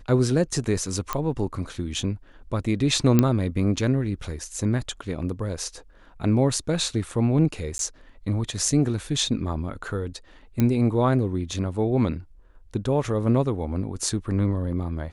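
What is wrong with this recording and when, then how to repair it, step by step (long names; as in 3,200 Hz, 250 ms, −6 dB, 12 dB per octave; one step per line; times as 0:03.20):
0:01.13: click −10 dBFS
0:03.19: click −5 dBFS
0:07.78–0:07.79: drop-out 12 ms
0:10.60: click −10 dBFS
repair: click removal
repair the gap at 0:07.78, 12 ms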